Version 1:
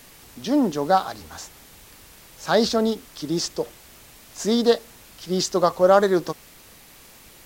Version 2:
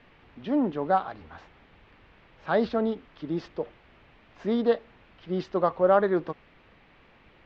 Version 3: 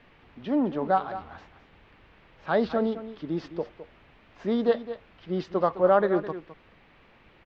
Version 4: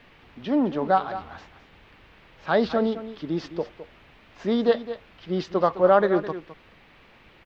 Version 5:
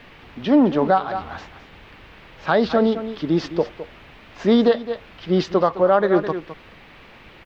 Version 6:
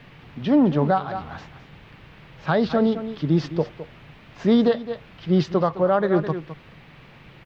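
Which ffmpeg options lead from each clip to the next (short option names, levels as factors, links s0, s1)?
-af "lowpass=f=2800:w=0.5412,lowpass=f=2800:w=1.3066,volume=0.562"
-af "aecho=1:1:211:0.224"
-af "highshelf=f=3500:g=8,volume=1.33"
-af "alimiter=limit=0.2:level=0:latency=1:release=352,volume=2.51"
-af "equalizer=f=140:t=o:w=0.74:g=13.5,volume=0.631"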